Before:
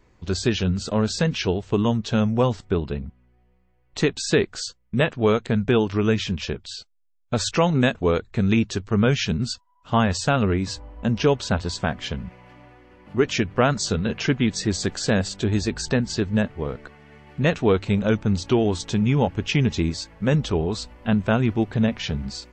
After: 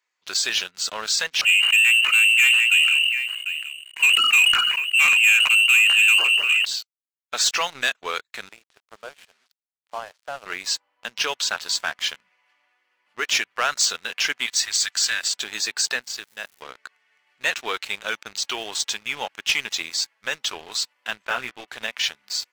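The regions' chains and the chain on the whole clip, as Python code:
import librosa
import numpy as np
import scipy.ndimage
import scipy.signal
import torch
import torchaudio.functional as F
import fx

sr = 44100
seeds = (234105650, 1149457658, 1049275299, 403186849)

y = fx.chain(x, sr, fx.echo_single(ms=745, db=-15.0),
    fx.freq_invert(carrier_hz=2900),
    fx.sustainer(db_per_s=36.0), at=(1.41, 6.65))
y = fx.chain(y, sr, fx.bandpass_q(hz=610.0, q=2.8),
    fx.quant_dither(seeds[0], bits=8, dither='none'),
    fx.air_absorb(metres=77.0), at=(8.49, 10.46))
y = fx.chain(y, sr, fx.highpass(hz=1200.0, slope=12),
    fx.comb(ms=5.1, depth=0.33), at=(14.46, 15.25))
y = fx.level_steps(y, sr, step_db=13, at=(16.01, 16.61), fade=0.02)
y = fx.dmg_crackle(y, sr, seeds[1], per_s=450.0, level_db=-46.0, at=(16.01, 16.61), fade=0.02)
y = fx.chain(y, sr, fx.air_absorb(metres=250.0),
    fx.doubler(ms=16.0, db=-4), at=(21.25, 21.68))
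y = scipy.signal.sosfilt(scipy.signal.butter(2, 1500.0, 'highpass', fs=sr, output='sos'), y)
y = fx.high_shelf(y, sr, hz=5100.0, db=3.5)
y = fx.leveller(y, sr, passes=3)
y = y * librosa.db_to_amplitude(-4.0)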